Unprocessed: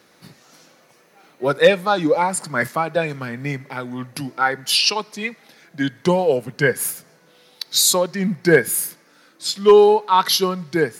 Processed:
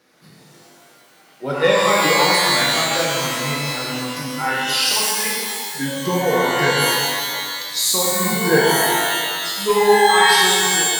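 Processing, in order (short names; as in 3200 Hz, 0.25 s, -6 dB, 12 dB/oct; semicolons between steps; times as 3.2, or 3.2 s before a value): ending faded out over 0.67 s; shimmer reverb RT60 1.9 s, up +12 st, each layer -2 dB, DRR -5 dB; gain -7 dB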